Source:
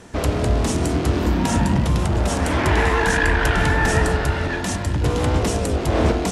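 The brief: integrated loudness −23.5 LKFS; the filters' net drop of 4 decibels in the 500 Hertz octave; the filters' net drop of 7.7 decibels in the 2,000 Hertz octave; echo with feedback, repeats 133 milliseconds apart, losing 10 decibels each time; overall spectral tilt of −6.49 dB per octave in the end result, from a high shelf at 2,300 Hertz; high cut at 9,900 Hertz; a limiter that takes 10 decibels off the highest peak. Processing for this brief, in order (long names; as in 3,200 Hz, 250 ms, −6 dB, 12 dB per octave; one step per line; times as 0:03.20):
low-pass filter 9,900 Hz
parametric band 500 Hz −4.5 dB
parametric band 2,000 Hz −6.5 dB
high-shelf EQ 2,300 Hz −6.5 dB
brickwall limiter −16.5 dBFS
repeating echo 133 ms, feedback 32%, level −10 dB
level +2 dB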